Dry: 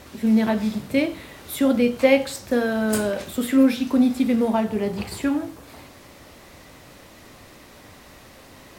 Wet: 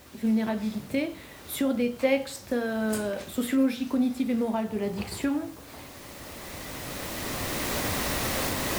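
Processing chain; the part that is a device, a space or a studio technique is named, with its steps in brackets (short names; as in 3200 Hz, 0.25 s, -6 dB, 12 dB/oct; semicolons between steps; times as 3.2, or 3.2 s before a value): cheap recorder with automatic gain (white noise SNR 29 dB; recorder AGC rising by 8.9 dB/s); gain -7.5 dB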